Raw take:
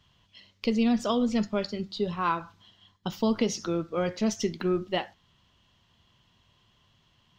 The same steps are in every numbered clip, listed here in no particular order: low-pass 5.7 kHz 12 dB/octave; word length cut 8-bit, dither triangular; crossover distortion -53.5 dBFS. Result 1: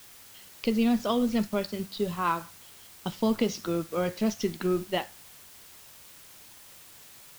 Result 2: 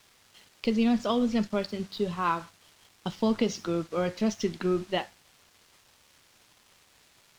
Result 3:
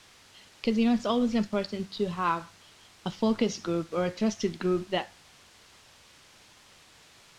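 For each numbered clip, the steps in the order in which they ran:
low-pass > word length cut > crossover distortion; word length cut > low-pass > crossover distortion; word length cut > crossover distortion > low-pass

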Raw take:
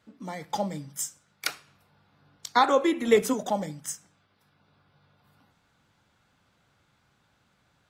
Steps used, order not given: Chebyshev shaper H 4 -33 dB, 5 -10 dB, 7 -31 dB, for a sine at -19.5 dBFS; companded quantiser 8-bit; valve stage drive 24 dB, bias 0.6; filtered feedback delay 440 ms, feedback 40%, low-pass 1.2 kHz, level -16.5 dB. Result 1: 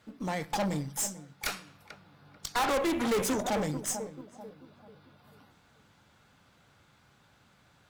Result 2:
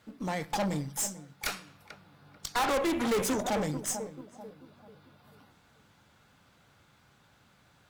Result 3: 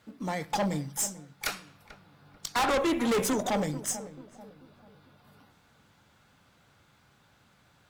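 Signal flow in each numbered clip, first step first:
filtered feedback delay > Chebyshev shaper > companded quantiser > valve stage; filtered feedback delay > companded quantiser > Chebyshev shaper > valve stage; companded quantiser > valve stage > filtered feedback delay > Chebyshev shaper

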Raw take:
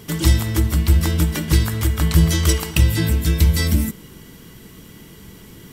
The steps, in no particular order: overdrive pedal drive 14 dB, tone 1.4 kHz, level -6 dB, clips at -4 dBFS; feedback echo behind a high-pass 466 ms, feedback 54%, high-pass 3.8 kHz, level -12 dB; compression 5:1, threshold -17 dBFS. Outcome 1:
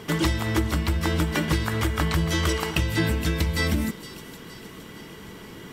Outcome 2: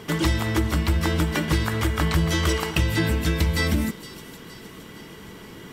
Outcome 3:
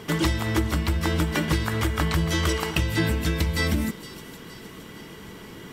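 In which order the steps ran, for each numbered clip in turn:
compression > feedback echo behind a high-pass > overdrive pedal; overdrive pedal > compression > feedback echo behind a high-pass; compression > overdrive pedal > feedback echo behind a high-pass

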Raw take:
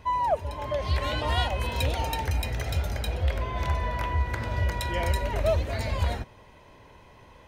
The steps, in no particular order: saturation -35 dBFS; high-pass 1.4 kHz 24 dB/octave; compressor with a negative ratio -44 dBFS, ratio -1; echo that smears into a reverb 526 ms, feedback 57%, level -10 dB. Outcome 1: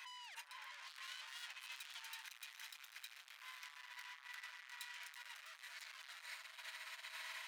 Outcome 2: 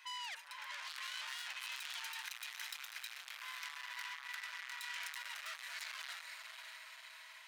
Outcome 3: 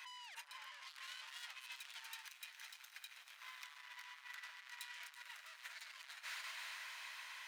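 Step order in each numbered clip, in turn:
echo that smears into a reverb > saturation > compressor with a negative ratio > high-pass; echo that smears into a reverb > saturation > high-pass > compressor with a negative ratio; saturation > echo that smears into a reverb > compressor with a negative ratio > high-pass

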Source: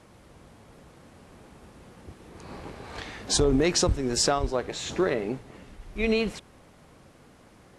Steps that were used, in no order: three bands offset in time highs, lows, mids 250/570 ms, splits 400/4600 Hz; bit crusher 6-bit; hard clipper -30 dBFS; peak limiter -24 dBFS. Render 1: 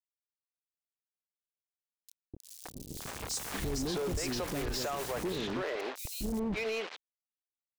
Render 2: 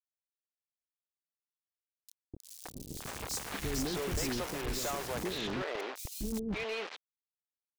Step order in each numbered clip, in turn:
bit crusher > three bands offset in time > peak limiter > hard clipper; peak limiter > bit crusher > three bands offset in time > hard clipper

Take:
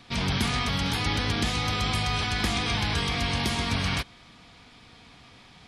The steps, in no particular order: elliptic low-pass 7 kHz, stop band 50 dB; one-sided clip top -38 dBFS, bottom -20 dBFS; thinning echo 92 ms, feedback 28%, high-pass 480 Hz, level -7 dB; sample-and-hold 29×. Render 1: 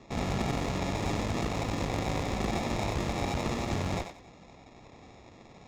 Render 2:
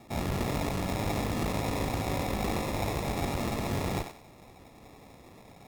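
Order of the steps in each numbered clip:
sample-and-hold > elliptic low-pass > one-sided clip > thinning echo; elliptic low-pass > sample-and-hold > one-sided clip > thinning echo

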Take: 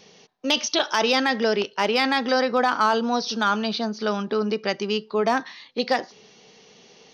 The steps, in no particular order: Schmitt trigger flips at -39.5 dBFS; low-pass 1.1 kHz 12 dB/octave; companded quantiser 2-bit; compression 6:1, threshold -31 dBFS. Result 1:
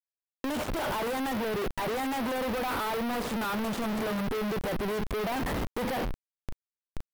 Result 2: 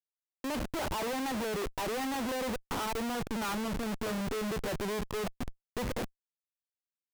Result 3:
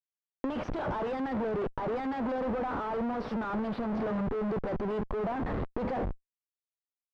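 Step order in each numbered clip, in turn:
Schmitt trigger > low-pass > companded quantiser > compression; low-pass > companded quantiser > compression > Schmitt trigger; companded quantiser > Schmitt trigger > compression > low-pass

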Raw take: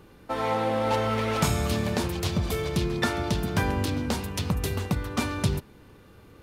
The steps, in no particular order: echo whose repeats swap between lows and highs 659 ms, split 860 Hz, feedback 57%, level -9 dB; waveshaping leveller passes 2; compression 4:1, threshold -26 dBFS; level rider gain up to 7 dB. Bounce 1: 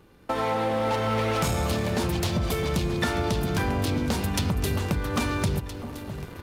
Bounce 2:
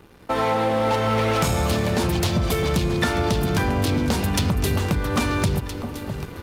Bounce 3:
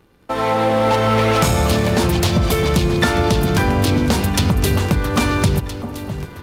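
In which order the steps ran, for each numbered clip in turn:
level rider > waveshaping leveller > compression > echo whose repeats swap between lows and highs; level rider > compression > echo whose repeats swap between lows and highs > waveshaping leveller; compression > level rider > waveshaping leveller > echo whose repeats swap between lows and highs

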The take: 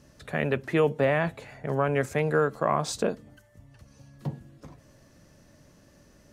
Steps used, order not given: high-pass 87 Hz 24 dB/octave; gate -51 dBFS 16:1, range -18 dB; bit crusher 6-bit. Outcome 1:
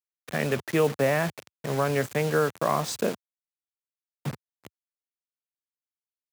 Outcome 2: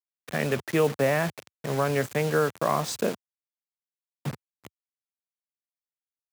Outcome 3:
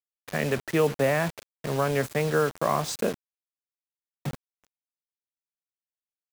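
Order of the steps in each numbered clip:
bit crusher > gate > high-pass; bit crusher > high-pass > gate; high-pass > bit crusher > gate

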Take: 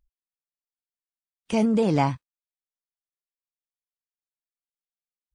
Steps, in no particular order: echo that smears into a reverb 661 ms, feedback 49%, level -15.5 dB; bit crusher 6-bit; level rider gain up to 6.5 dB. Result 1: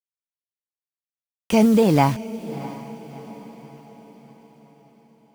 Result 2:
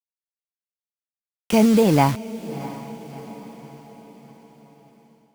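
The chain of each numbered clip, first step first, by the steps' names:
level rider > bit crusher > echo that smears into a reverb; bit crusher > echo that smears into a reverb > level rider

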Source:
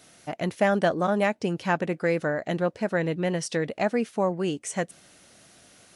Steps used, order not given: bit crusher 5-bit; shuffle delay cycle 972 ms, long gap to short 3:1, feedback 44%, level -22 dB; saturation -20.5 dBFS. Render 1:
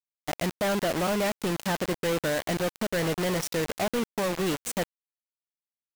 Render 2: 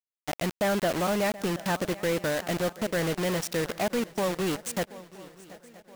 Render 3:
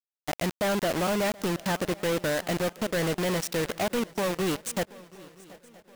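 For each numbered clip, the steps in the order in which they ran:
shuffle delay > saturation > bit crusher; bit crusher > shuffle delay > saturation; saturation > bit crusher > shuffle delay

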